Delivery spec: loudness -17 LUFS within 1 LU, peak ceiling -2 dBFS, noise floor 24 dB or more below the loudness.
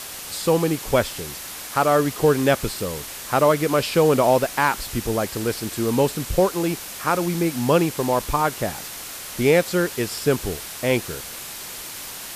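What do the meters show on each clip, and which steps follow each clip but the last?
noise floor -35 dBFS; noise floor target -46 dBFS; loudness -22.0 LUFS; peak level -5.5 dBFS; loudness target -17.0 LUFS
-> noise reduction 11 dB, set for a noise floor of -35 dBFS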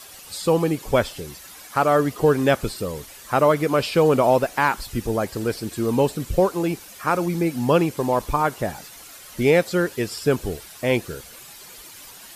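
noise floor -43 dBFS; noise floor target -46 dBFS
-> noise reduction 6 dB, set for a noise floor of -43 dBFS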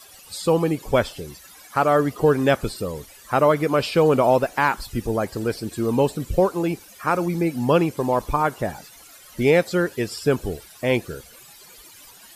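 noise floor -47 dBFS; loudness -22.0 LUFS; peak level -6.0 dBFS; loudness target -17.0 LUFS
-> trim +5 dB; peak limiter -2 dBFS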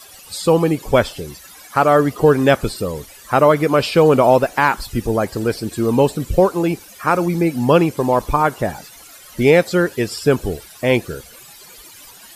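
loudness -17.0 LUFS; peak level -2.0 dBFS; noise floor -42 dBFS

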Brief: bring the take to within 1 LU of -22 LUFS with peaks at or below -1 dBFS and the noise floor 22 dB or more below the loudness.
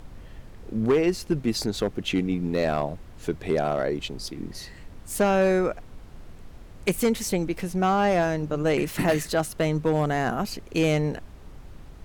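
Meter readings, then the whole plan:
clipped samples 0.8%; clipping level -15.0 dBFS; noise floor -45 dBFS; noise floor target -48 dBFS; loudness -25.5 LUFS; peak level -15.0 dBFS; loudness target -22.0 LUFS
-> clip repair -15 dBFS; noise print and reduce 6 dB; trim +3.5 dB

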